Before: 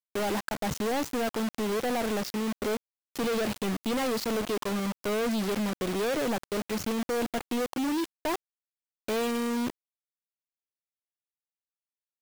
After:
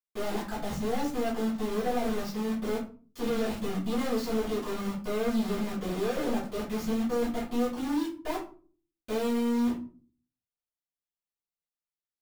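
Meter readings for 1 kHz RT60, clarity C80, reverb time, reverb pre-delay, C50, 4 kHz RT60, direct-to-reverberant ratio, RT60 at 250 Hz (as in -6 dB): 0.35 s, 12.5 dB, 0.40 s, 3 ms, 7.0 dB, 0.25 s, -10.5 dB, 0.60 s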